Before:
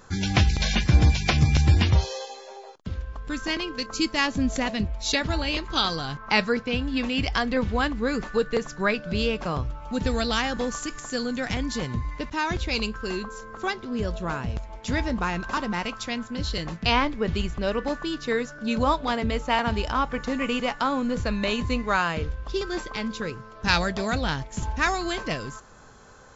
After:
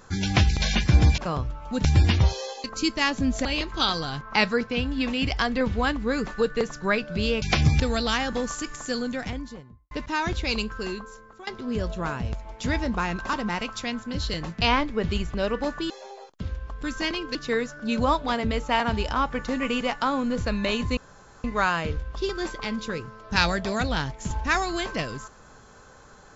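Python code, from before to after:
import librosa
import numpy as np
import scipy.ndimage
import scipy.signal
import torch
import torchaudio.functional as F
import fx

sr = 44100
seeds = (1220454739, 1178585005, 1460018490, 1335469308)

y = fx.studio_fade_out(x, sr, start_s=11.16, length_s=0.99)
y = fx.edit(y, sr, fx.swap(start_s=1.18, length_s=0.38, other_s=9.38, other_length_s=0.66),
    fx.move(start_s=2.36, length_s=1.45, to_s=18.14),
    fx.cut(start_s=4.62, length_s=0.79),
    fx.fade_out_to(start_s=12.98, length_s=0.73, floor_db=-19.5),
    fx.insert_room_tone(at_s=21.76, length_s=0.47), tone=tone)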